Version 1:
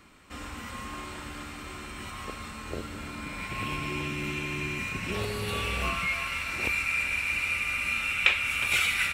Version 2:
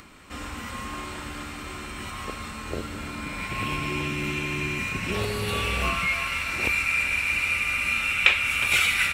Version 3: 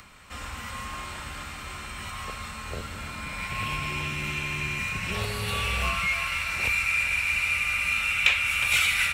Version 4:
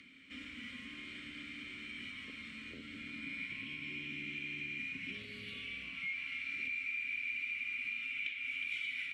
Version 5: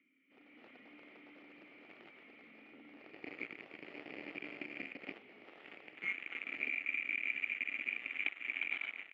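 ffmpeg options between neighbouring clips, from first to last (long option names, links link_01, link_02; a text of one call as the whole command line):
ffmpeg -i in.wav -af "acompressor=mode=upward:threshold=-48dB:ratio=2.5,volume=4dB" out.wav
ffmpeg -i in.wav -filter_complex "[0:a]equalizer=frequency=310:width=1.5:gain=-12,acrossover=split=170|2500[link_01][link_02][link_03];[link_02]asoftclip=type=tanh:threshold=-22.5dB[link_04];[link_01][link_04][link_03]amix=inputs=3:normalize=0" out.wav
ffmpeg -i in.wav -filter_complex "[0:a]acompressor=threshold=-33dB:ratio=10,asplit=3[link_01][link_02][link_03];[link_01]bandpass=frequency=270:width_type=q:width=8,volume=0dB[link_04];[link_02]bandpass=frequency=2290:width_type=q:width=8,volume=-6dB[link_05];[link_03]bandpass=frequency=3010:width_type=q:width=8,volume=-9dB[link_06];[link_04][link_05][link_06]amix=inputs=3:normalize=0,volume=5.5dB" out.wav
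ffmpeg -i in.wav -af "aeval=exprs='0.0562*(cos(1*acos(clip(val(0)/0.0562,-1,1)))-cos(1*PI/2))+0.01*(cos(7*acos(clip(val(0)/0.0562,-1,1)))-cos(7*PI/2))':channel_layout=same,dynaudnorm=framelen=140:gausssize=7:maxgain=11.5dB,highpass=300,equalizer=frequency=310:width_type=q:width=4:gain=6,equalizer=frequency=1000:width_type=q:width=4:gain=-9,equalizer=frequency=1600:width_type=q:width=4:gain=-10,lowpass=frequency=2200:width=0.5412,lowpass=frequency=2200:width=1.3066" out.wav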